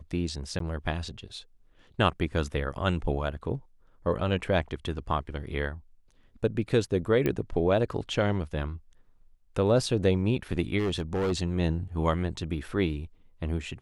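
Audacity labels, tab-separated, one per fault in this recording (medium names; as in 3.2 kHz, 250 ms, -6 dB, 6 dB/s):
0.590000	0.600000	dropout 13 ms
7.260000	7.260000	pop -15 dBFS
10.780000	11.320000	clipped -24 dBFS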